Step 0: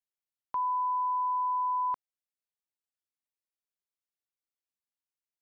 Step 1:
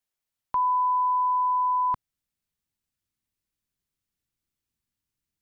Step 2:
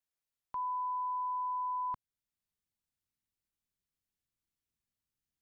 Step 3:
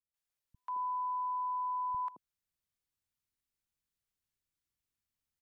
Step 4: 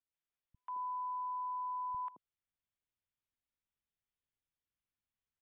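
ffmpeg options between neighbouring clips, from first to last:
ffmpeg -i in.wav -af "asubboost=boost=8:cutoff=220,volume=7dB" out.wav
ffmpeg -i in.wav -af "alimiter=level_in=1.5dB:limit=-24dB:level=0:latency=1:release=462,volume=-1.5dB,volume=-6.5dB" out.wav
ffmpeg -i in.wav -filter_complex "[0:a]acrossover=split=200|620[link_01][link_02][link_03];[link_03]adelay=140[link_04];[link_02]adelay=220[link_05];[link_01][link_05][link_04]amix=inputs=3:normalize=0" out.wav
ffmpeg -i in.wav -af "aresample=8000,aresample=44100,volume=-4dB" out.wav

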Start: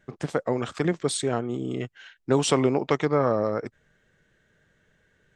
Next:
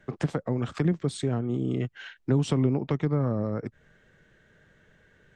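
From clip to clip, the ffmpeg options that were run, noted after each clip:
ffmpeg -i in.wav -filter_complex "[0:a]highshelf=frequency=5700:gain=-9,acrossover=split=240[link_01][link_02];[link_02]acompressor=threshold=-37dB:ratio=10[link_03];[link_01][link_03]amix=inputs=2:normalize=0,volume=5.5dB" out.wav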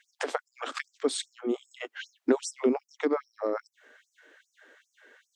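ffmpeg -i in.wav -af "afftfilt=real='re*gte(b*sr/1024,230*pow(5400/230,0.5+0.5*sin(2*PI*2.5*pts/sr)))':imag='im*gte(b*sr/1024,230*pow(5400/230,0.5+0.5*sin(2*PI*2.5*pts/sr)))':win_size=1024:overlap=0.75,volume=6dB" out.wav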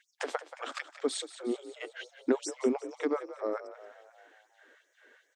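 ffmpeg -i in.wav -filter_complex "[0:a]asplit=7[link_01][link_02][link_03][link_04][link_05][link_06][link_07];[link_02]adelay=179,afreqshift=43,volume=-14dB[link_08];[link_03]adelay=358,afreqshift=86,volume=-18.9dB[link_09];[link_04]adelay=537,afreqshift=129,volume=-23.8dB[link_10];[link_05]adelay=716,afreqshift=172,volume=-28.6dB[link_11];[link_06]adelay=895,afreqshift=215,volume=-33.5dB[link_12];[link_07]adelay=1074,afreqshift=258,volume=-38.4dB[link_13];[link_01][link_08][link_09][link_10][link_11][link_12][link_13]amix=inputs=7:normalize=0,volume=-3.5dB" out.wav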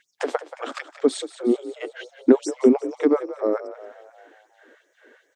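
ffmpeg -i in.wav -af "equalizer=frequency=210:width=0.32:gain=11,volume=3dB" out.wav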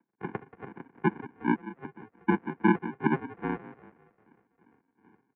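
ffmpeg -i in.wav -af "aresample=16000,acrusher=samples=24:mix=1:aa=0.000001,aresample=44100,highpass=frequency=260:width_type=q:width=0.5412,highpass=frequency=260:width_type=q:width=1.307,lowpass=frequency=2200:width_type=q:width=0.5176,lowpass=frequency=2200:width_type=q:width=0.7071,lowpass=frequency=2200:width_type=q:width=1.932,afreqshift=-65,volume=-5dB" out.wav

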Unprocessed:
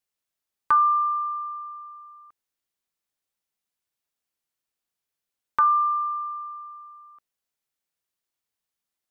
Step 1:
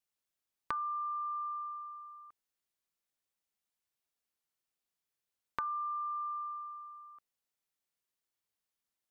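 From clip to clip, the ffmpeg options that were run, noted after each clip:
ffmpeg -i in.wav -af "acompressor=threshold=-31dB:ratio=10,volume=-4dB" out.wav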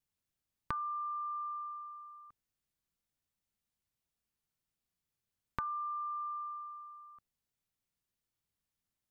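ffmpeg -i in.wav -af "bass=frequency=250:gain=14,treble=frequency=4000:gain=0,volume=-1.5dB" out.wav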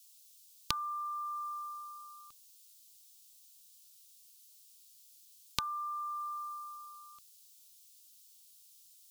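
ffmpeg -i in.wav -af "aexciter=amount=14.6:drive=8:freq=2800" out.wav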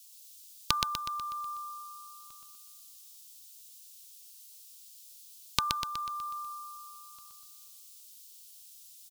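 ffmpeg -i in.wav -af "aecho=1:1:123|246|369|492|615|738|861:0.631|0.328|0.171|0.0887|0.0461|0.024|0.0125,volume=5.5dB" out.wav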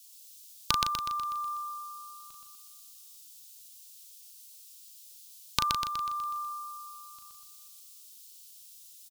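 ffmpeg -i in.wav -filter_complex "[0:a]asplit=2[link_01][link_02];[link_02]adelay=37,volume=-6.5dB[link_03];[link_01][link_03]amix=inputs=2:normalize=0" out.wav

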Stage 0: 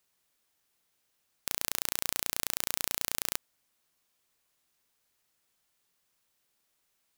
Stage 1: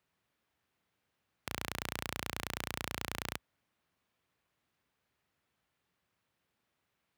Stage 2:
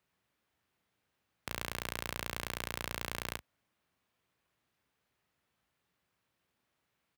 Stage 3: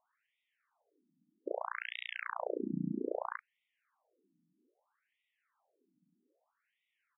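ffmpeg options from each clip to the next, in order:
ffmpeg -i in.wav -af "highpass=frequency=56:width=0.5412,highpass=frequency=56:width=1.3066,bass=frequency=250:gain=6,treble=frequency=4000:gain=-15,volume=1dB" out.wav
ffmpeg -i in.wav -af "aecho=1:1:16|36:0.133|0.266" out.wav
ffmpeg -i in.wav -af "tiltshelf=frequency=770:gain=8.5,afftfilt=real='re*between(b*sr/1024,220*pow(2700/220,0.5+0.5*sin(2*PI*0.62*pts/sr))/1.41,220*pow(2700/220,0.5+0.5*sin(2*PI*0.62*pts/sr))*1.41)':imag='im*between(b*sr/1024,220*pow(2700/220,0.5+0.5*sin(2*PI*0.62*pts/sr))/1.41,220*pow(2700/220,0.5+0.5*sin(2*PI*0.62*pts/sr))*1.41)':win_size=1024:overlap=0.75,volume=10dB" out.wav

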